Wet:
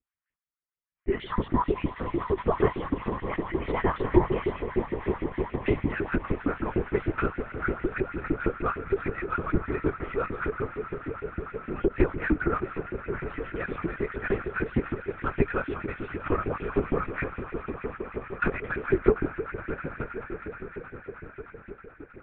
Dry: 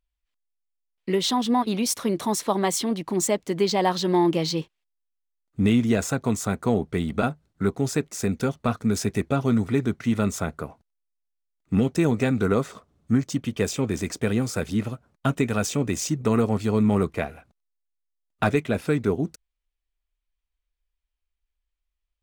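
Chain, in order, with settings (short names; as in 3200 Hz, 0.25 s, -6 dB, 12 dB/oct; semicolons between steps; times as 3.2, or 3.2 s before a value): bell 2800 Hz -10 dB 1.5 oct; in parallel at -3 dB: limiter -16.5 dBFS, peak gain reduction 7 dB; on the sum: fixed phaser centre 1700 Hz, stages 4; on a send: swelling echo 0.105 s, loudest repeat 8, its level -16.5 dB; on the sum: LFO high-pass saw up 6.5 Hz 290–2500 Hz; LPC vocoder at 8 kHz whisper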